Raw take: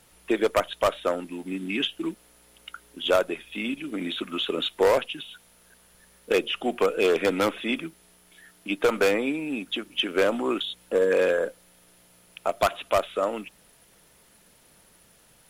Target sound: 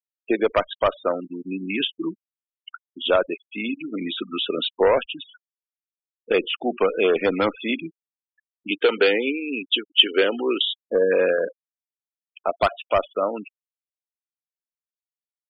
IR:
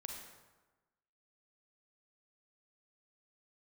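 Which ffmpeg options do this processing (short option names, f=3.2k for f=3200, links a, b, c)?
-filter_complex "[0:a]asettb=1/sr,asplit=3[a][b][c];[a]atrim=end=8.714[d];[b]atrim=start=8.71:end=10.81,asetpts=PTS-STARTPTS,afade=t=in:d=0.004:c=qsin,afade=t=out:st=2.096:d=0.004:c=qsin,highpass=250,equalizer=f=420:t=q:w=4:g=6,equalizer=f=630:t=q:w=4:g=-8,equalizer=f=1.1k:t=q:w=4:g=-7,equalizer=f=1.8k:t=q:w=4:g=3,equalizer=f=3k:t=q:w=4:g=10,equalizer=f=4.3k:t=q:w=4:g=4,lowpass=f=4.8k:w=0.5412,lowpass=f=4.8k:w=1.3066[e];[c]atrim=start=10.806[f];[d][e]acrossfade=d=0.004:c1=hsin:c2=qsin[g];[g][f]acrossfade=d=0.004:c1=qsin:c2=hsin,afftfilt=real='re*gte(hypot(re,im),0.0355)':imag='im*gte(hypot(re,im),0.0355)':win_size=1024:overlap=0.75,volume=2.5dB"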